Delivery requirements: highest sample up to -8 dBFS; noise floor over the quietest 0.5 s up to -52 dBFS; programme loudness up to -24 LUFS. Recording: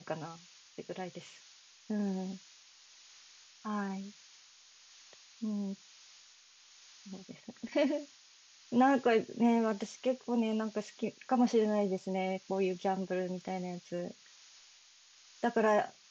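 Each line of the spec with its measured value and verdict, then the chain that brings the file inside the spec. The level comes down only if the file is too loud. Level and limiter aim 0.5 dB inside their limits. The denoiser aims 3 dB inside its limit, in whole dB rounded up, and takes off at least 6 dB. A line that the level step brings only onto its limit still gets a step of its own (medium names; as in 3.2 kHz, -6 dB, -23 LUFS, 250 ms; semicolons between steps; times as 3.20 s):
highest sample -16.0 dBFS: pass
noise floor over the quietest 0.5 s -61 dBFS: pass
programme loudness -33.5 LUFS: pass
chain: none needed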